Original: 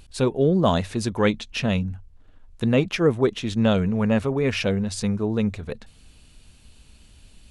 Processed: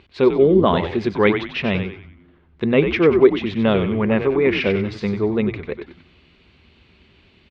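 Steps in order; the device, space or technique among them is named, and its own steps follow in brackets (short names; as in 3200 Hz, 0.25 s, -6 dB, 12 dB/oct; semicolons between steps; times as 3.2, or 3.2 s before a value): frequency-shifting delay pedal into a guitar cabinet (frequency-shifting echo 94 ms, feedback 40%, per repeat -89 Hz, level -7.5 dB; speaker cabinet 90–3800 Hz, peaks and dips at 130 Hz -7 dB, 380 Hz +9 dB, 1100 Hz +4 dB, 2100 Hz +8 dB); gain +1.5 dB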